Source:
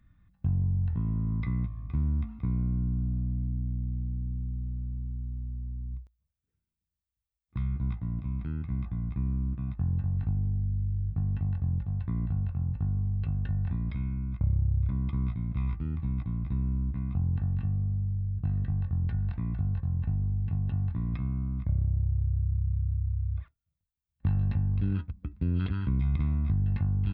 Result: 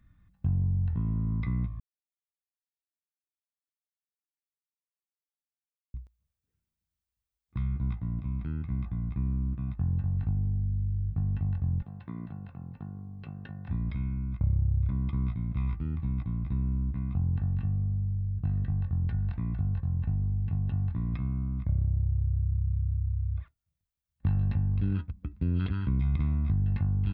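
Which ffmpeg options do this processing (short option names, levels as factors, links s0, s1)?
-filter_complex "[0:a]asettb=1/sr,asplit=3[s0][s1][s2];[s0]atrim=end=11.824[s3];[s1]atrim=start=11.82:end=13.69,asetpts=PTS-STARTPTS,afade=t=in:d=0.004:c=qsin,afade=t=out:st=1.866:d=0.004:c=qsin,highpass=220[s4];[s2]atrim=start=13.686[s5];[s3][s4]acrossfade=d=0.004:c1=hsin:c2=qsin[s6];[s6][s5]acrossfade=d=0.004:c1=qsin:c2=hsin,asplit=3[s7][s8][s9];[s7]atrim=end=1.8,asetpts=PTS-STARTPTS,afade=t=out:st=1.796:d=0.004:c=hsin[s10];[s8]atrim=start=1.8:end=5.94,asetpts=PTS-STARTPTS,volume=0[s11];[s9]atrim=start=5.94,asetpts=PTS-STARTPTS,afade=t=in:d=0.004:c=hsin[s12];[s10][s11][s12]concat=n=3:v=0:a=1"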